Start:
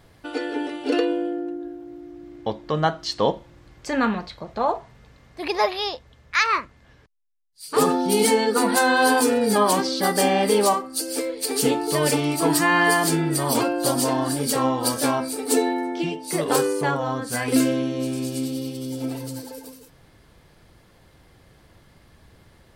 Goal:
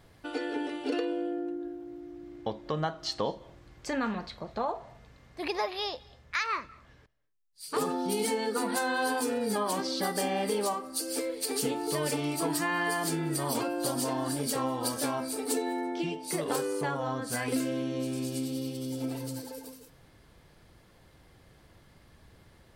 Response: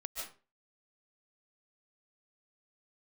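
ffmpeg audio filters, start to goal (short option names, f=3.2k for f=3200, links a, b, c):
-filter_complex "[0:a]acompressor=threshold=-24dB:ratio=3,asplit=2[a][b];[1:a]atrim=start_sample=2205,adelay=52[c];[b][c]afir=irnorm=-1:irlink=0,volume=-21dB[d];[a][d]amix=inputs=2:normalize=0,volume=-4.5dB"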